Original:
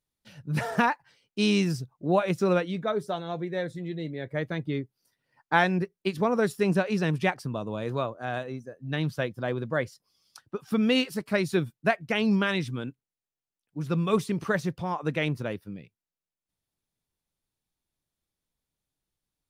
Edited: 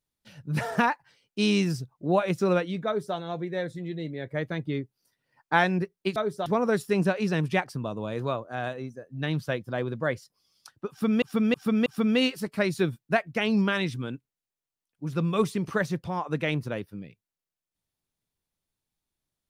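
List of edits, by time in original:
0:02.86–0:03.16: duplicate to 0:06.16
0:10.60–0:10.92: repeat, 4 plays

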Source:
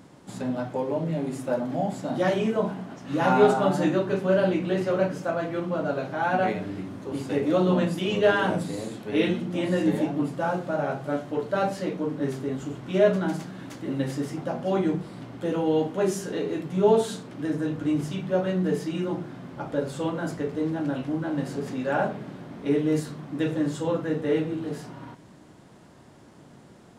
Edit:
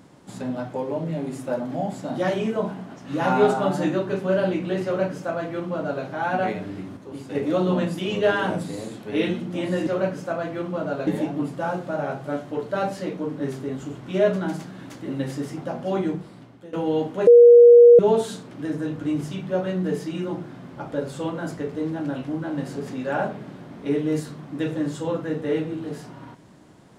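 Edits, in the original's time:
0:04.85–0:06.05: duplicate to 0:09.87
0:06.97–0:07.35: clip gain −5 dB
0:14.82–0:15.53: fade out, to −18.5 dB
0:16.07–0:16.79: beep over 477 Hz −6 dBFS

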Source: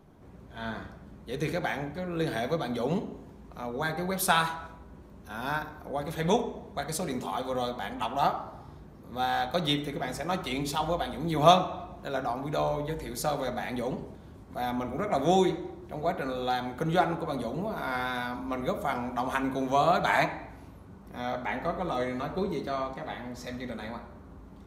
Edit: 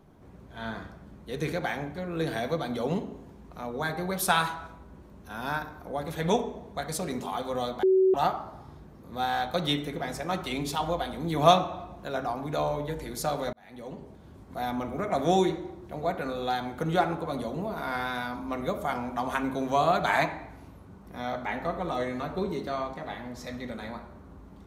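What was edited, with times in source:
0:07.83–0:08.14: beep over 378 Hz −17.5 dBFS
0:13.53–0:14.43: fade in

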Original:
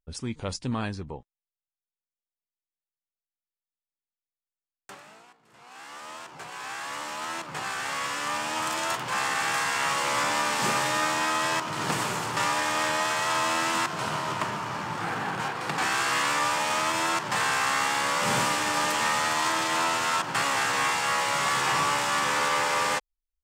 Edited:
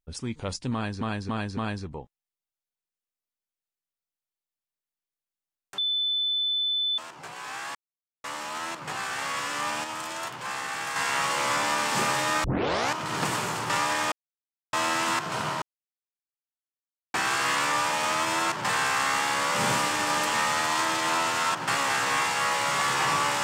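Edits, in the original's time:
0:00.73–0:01.01: repeat, 4 plays
0:04.94–0:06.14: beep over 3,510 Hz −23.5 dBFS
0:06.91: splice in silence 0.49 s
0:08.51–0:09.63: clip gain −5.5 dB
0:11.11: tape start 0.51 s
0:12.79–0:13.40: silence
0:14.29–0:15.81: silence

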